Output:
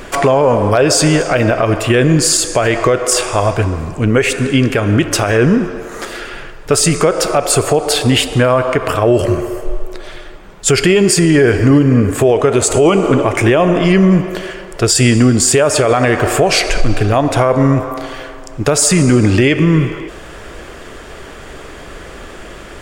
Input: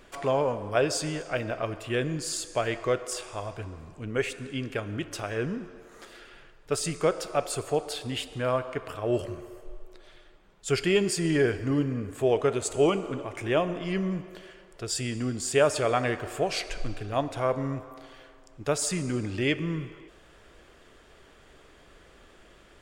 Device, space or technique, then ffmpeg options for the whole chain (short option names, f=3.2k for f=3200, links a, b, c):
mastering chain: -af "equalizer=f=3.6k:t=o:w=0.78:g=-3.5,acompressor=threshold=-28dB:ratio=2.5,asoftclip=type=hard:threshold=-18dB,alimiter=level_in=24dB:limit=-1dB:release=50:level=0:latency=1,volume=-1dB"